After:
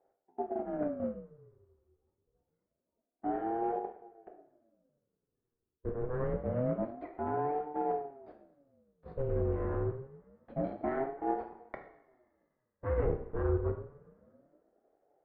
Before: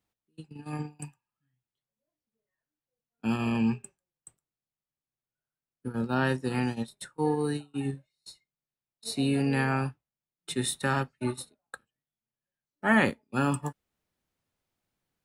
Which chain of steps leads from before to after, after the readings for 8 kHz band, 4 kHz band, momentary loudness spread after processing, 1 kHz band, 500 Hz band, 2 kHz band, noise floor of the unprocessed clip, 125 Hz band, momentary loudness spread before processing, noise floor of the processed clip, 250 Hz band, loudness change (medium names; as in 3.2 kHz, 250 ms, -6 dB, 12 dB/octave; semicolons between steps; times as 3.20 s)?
under -35 dB, under -35 dB, 15 LU, -2.5 dB, +0.5 dB, -18.5 dB, under -85 dBFS, -5.5 dB, 18 LU, under -85 dBFS, -9.0 dB, -6.0 dB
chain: block-companded coder 3-bit; low-pass 1.2 kHz 24 dB/octave; resonant low shelf 280 Hz +12 dB, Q 1.5; harmonic-percussive split harmonic -8 dB; reverse; compression 5:1, threshold -35 dBFS, peak gain reduction 16.5 dB; reverse; in parallel at -8 dB: saturation -36 dBFS, distortion -13 dB; on the sum: two-slope reverb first 0.62 s, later 2.3 s, from -19 dB, DRR 3 dB; ring modulator with a swept carrier 410 Hz, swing 45%, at 0.26 Hz; trim +4.5 dB